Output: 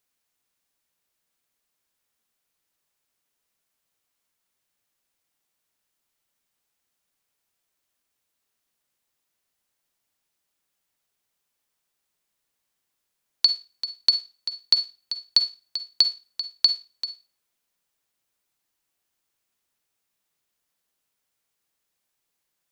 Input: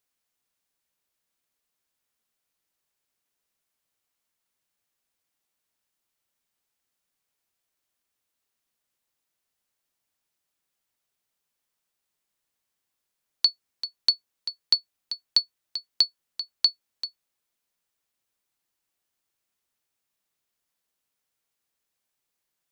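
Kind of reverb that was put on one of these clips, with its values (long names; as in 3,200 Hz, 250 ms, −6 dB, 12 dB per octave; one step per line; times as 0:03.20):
four-comb reverb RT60 0.32 s, DRR 11 dB
level +2.5 dB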